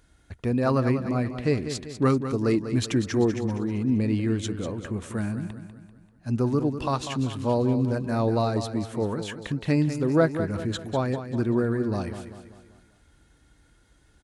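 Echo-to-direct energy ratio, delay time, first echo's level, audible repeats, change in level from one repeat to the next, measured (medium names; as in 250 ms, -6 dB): -9.0 dB, 195 ms, -10.0 dB, 4, -6.5 dB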